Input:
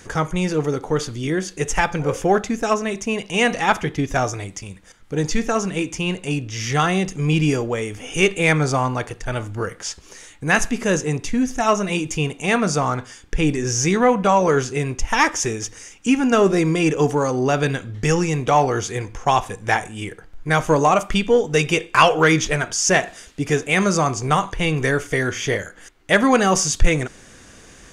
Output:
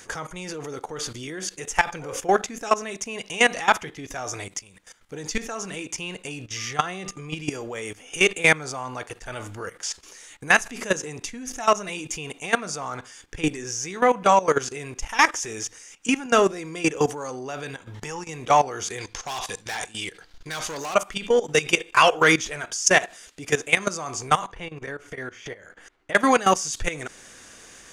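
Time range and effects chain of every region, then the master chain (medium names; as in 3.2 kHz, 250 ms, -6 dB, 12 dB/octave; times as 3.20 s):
6.56–7.33 s: treble shelf 4.8 kHz -5 dB + whistle 1.2 kHz -43 dBFS
17.74–18.29 s: peaking EQ 920 Hz +13 dB 0.34 oct + compression 16:1, threshold -27 dBFS
18.98–20.95 s: peaking EQ 4.3 kHz +14 dB 1.1 oct + hard clipper -15.5 dBFS
24.47–26.15 s: low-pass 1.8 kHz 6 dB/octave + compression 10:1, threshold -28 dBFS
whole clip: treble shelf 5.6 kHz +3.5 dB; level held to a coarse grid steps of 16 dB; bass shelf 290 Hz -11.5 dB; trim +3 dB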